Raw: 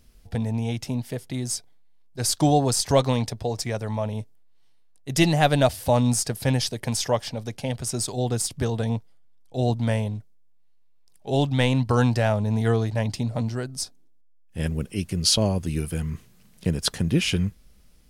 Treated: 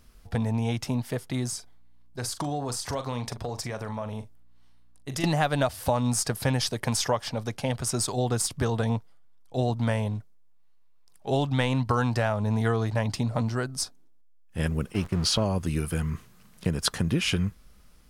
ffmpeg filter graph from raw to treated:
-filter_complex "[0:a]asettb=1/sr,asplit=3[a][b][c];[a]atrim=end=1.484[d];[b]atrim=start=1.48:end=5.24,asetpts=PTS-STARTPTS,afade=t=in:d=0.004:c=qsin,afade=t=out:st=3.756:d=0.004:c=qsin,acompressor=threshold=-30dB:ratio=5:attack=3.2:release=140:knee=1:detection=peak,aeval=exprs='val(0)+0.000447*(sin(2*PI*60*n/s)+sin(2*PI*2*60*n/s)/2+sin(2*PI*3*60*n/s)/3+sin(2*PI*4*60*n/s)/4+sin(2*PI*5*60*n/s)/5)':c=same,asplit=2[e][f];[f]adelay=41,volume=-11.5dB[g];[e][g]amix=inputs=2:normalize=0,atrim=end_sample=165816[h];[c]atrim=start=5.236[i];[d][h]acrossfade=d=0.004:c1=hsin:c2=qsin[j];[j][i]acrossfade=d=0.004:c1=qsin:c2=hsin,asettb=1/sr,asplit=3[k][l][m];[k]atrim=end=14.924[n];[l]atrim=start=14.92:end=15.44,asetpts=PTS-STARTPTS,afade=t=in:d=0.004:c=qsin,afade=t=out:st=0.516:d=0.004:c=qsin,aeval=exprs='val(0)+0.5*0.0224*sgn(val(0))':c=same,aemphasis=mode=reproduction:type=cd,agate=range=-15dB:threshold=-33dB:ratio=16:release=100:detection=peak[o];[m]atrim=start=15.436[p];[n][o]acrossfade=d=0.004:c1=hsin:c2=qsin[q];[q][p]acrossfade=d=0.004:c1=qsin:c2=hsin,equalizer=f=1.2k:w=1.4:g=8,acompressor=threshold=-21dB:ratio=6"

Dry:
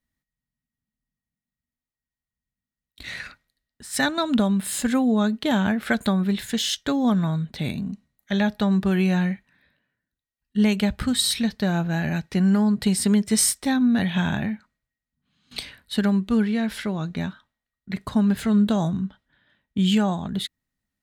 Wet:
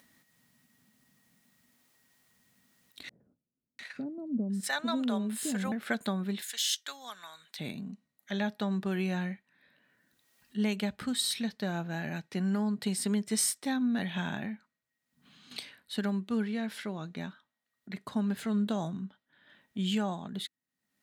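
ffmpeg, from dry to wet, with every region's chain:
-filter_complex "[0:a]asettb=1/sr,asplit=3[a][b][c];[a]atrim=end=3.094[d];[b]atrim=start=3.09:end=5.72,asetpts=PTS-STARTPTS,afade=t=in:d=0.004:c=qsin,afade=t=out:st=2.626:d=0.004:c=qsin,agate=range=-7dB:threshold=-35dB:ratio=16:release=100:detection=peak,acrossover=split=460[e][f];[f]adelay=700[g];[e][g]amix=inputs=2:normalize=0,atrim=end_sample=115983[h];[c]atrim=start=5.716[i];[d][h]acrossfade=d=0.004:c1=hsin:c2=qsin[j];[j][i]acrossfade=d=0.004:c1=qsin:c2=hsin,asettb=1/sr,asplit=3[k][l][m];[k]atrim=end=6.424[n];[l]atrim=start=6.42:end=7.59,asetpts=PTS-STARTPTS,afade=t=in:d=0.004:c=qsin,afade=t=out:st=1.166:d=0.004:c=qsin,highpass=1.3k,highshelf=f=4.6k:g=8.5[o];[m]atrim=start=7.586[p];[n][o]acrossfade=d=0.004:c1=hsin:c2=qsin[q];[q][p]acrossfade=d=0.004:c1=qsin:c2=hsin,highpass=190,acompressor=mode=upward:threshold=-34dB:ratio=2.5,volume=-8.5dB"

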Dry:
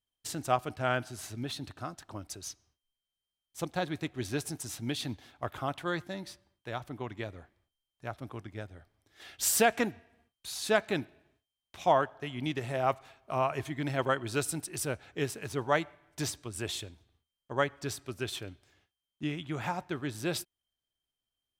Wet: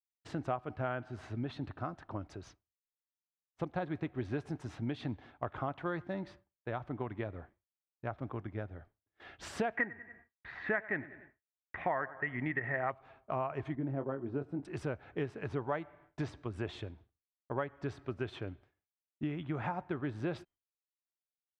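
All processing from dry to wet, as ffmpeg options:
-filter_complex "[0:a]asettb=1/sr,asplit=3[a][b][c];[a]atrim=end=9.774[d];[b]atrim=start=9.77:end=12.9,asetpts=PTS-STARTPTS,afade=t=in:d=0.004:c=qsin,afade=t=out:st=3.126:d=0.004:c=qsin,lowpass=f=1.9k:t=q:w=13,aecho=1:1:95|190|285:0.1|0.042|0.0176,atrim=end_sample=138033[e];[c]atrim=start=12.896[f];[d][e]acrossfade=d=0.004:c1=hsin:c2=qsin[g];[g][f]acrossfade=d=0.004:c1=qsin:c2=hsin,asettb=1/sr,asplit=3[h][i][j];[h]atrim=end=13.754[k];[i]atrim=start=13.75:end=14.65,asetpts=PTS-STARTPTS,afade=t=in:d=0.004:c=qsin,afade=t=out:st=0.896:d=0.004:c=qsin,bandpass=f=270:t=q:w=0.83,asplit=2[l][m];[m]adelay=22,volume=-8dB[n];[l][n]amix=inputs=2:normalize=0,atrim=end_sample=39690[o];[j]atrim=start=14.646[p];[k][o]acrossfade=d=0.004:c1=hsin:c2=qsin[q];[q][p]acrossfade=d=0.004:c1=qsin:c2=hsin,lowpass=1.7k,agate=range=-33dB:threshold=-55dB:ratio=3:detection=peak,acompressor=threshold=-36dB:ratio=4,volume=3dB"

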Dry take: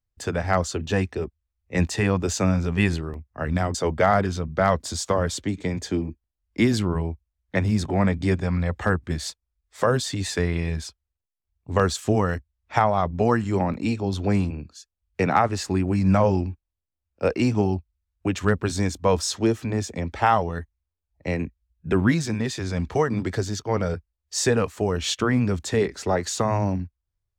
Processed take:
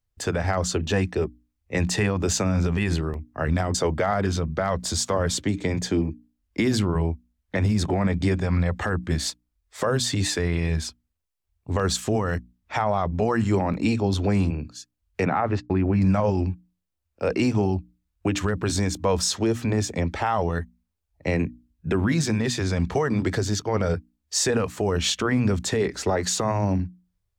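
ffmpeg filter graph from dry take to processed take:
-filter_complex "[0:a]asettb=1/sr,asplit=3[a][b][c];[a]atrim=end=15.254[d];[b]atrim=start=15.25:end=16.02,asetpts=PTS-STARTPTS,afade=t=in:d=0.004:c=qsin,afade=t=out:st=0.766:d=0.004:c=qsin,lowpass=2.6k,agate=range=-50dB:threshold=-33dB:ratio=16:release=100:detection=peak[e];[c]atrim=start=16.016[f];[d][e]acrossfade=d=0.004:c1=hsin:c2=qsin[g];[g][f]acrossfade=d=0.004:c1=qsin:c2=hsin,bandreject=f=60:t=h:w=6,bandreject=f=120:t=h:w=6,bandreject=f=180:t=h:w=6,bandreject=f=240:t=h:w=6,bandreject=f=300:t=h:w=6,alimiter=limit=-17.5dB:level=0:latency=1:release=54,volume=4dB"

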